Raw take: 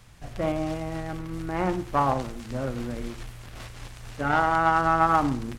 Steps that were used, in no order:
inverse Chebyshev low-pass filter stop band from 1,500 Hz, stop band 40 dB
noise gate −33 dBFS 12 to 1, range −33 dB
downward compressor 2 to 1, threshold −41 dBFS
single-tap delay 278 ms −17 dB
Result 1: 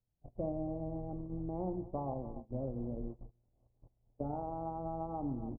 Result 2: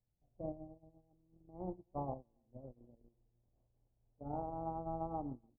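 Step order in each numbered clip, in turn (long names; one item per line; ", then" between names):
single-tap delay, then noise gate, then downward compressor, then inverse Chebyshev low-pass filter
single-tap delay, then downward compressor, then noise gate, then inverse Chebyshev low-pass filter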